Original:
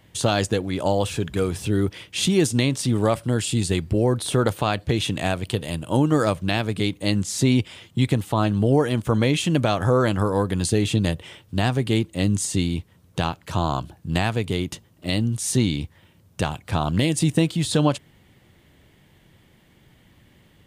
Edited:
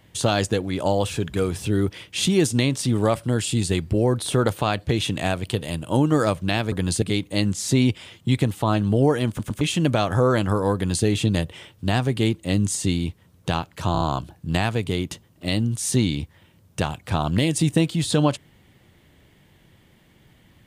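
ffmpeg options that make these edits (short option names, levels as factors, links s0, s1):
-filter_complex "[0:a]asplit=9[s0][s1][s2][s3][s4][s5][s6][s7][s8];[s0]atrim=end=6.722[s9];[s1]atrim=start=10.448:end=10.752[s10];[s2]atrim=start=6.718:end=9.092[s11];[s3]atrim=start=8.978:end=9.092[s12];[s4]atrim=start=8.978:end=9.092[s13];[s5]atrim=start=9.308:end=13.652[s14];[s6]atrim=start=13.618:end=13.652[s15];[s7]atrim=start=13.618:end=13.652[s16];[s8]atrim=start=13.618[s17];[s9][s10]acrossfade=d=0.004:c1=hsin:c2=hsin[s18];[s18][s11]acrossfade=d=0.004:c1=hsin:c2=hsin[s19];[s19][s12]acrossfade=d=0.004:c1=hsin:c2=hsin[s20];[s20][s13]acrossfade=d=0.004:c1=hsin:c2=hsin[s21];[s21][s14]acrossfade=d=0.004:c1=hsin:c2=hsin[s22];[s22][s15]acrossfade=d=0.004:c1=hsin:c2=hsin[s23];[s23][s16]acrossfade=d=0.004:c1=hsin:c2=hsin[s24];[s24][s17]acrossfade=d=0.004:c1=hsin:c2=hsin"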